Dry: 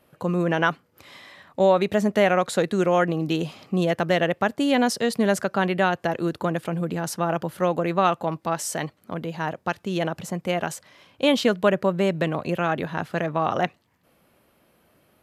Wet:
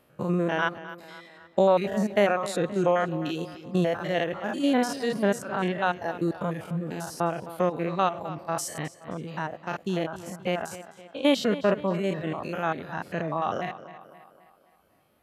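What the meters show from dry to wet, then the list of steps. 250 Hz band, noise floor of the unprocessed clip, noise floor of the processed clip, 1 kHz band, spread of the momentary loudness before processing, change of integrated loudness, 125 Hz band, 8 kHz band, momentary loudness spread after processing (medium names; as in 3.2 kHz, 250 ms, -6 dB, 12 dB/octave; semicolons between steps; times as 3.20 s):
-3.5 dB, -64 dBFS, -61 dBFS, -4.0 dB, 9 LU, -4.0 dB, -4.0 dB, -5.0 dB, 12 LU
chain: spectrogram pixelated in time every 100 ms; reverb removal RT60 1.7 s; tape echo 261 ms, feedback 52%, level -14 dB, low-pass 5.6 kHz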